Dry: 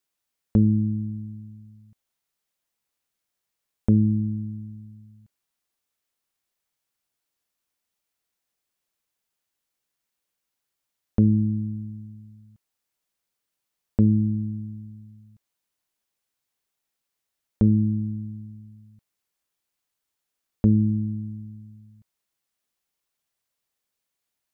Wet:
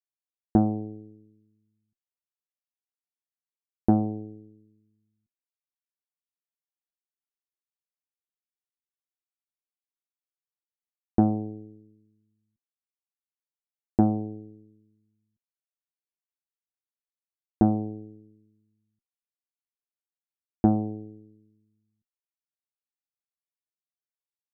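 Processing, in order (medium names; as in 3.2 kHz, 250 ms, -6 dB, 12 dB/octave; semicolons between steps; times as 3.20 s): Chebyshev shaper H 2 -20 dB, 3 -10 dB, 6 -25 dB, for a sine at -8.5 dBFS; small resonant body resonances 250/350/740 Hz, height 11 dB, ringing for 70 ms; trim -4 dB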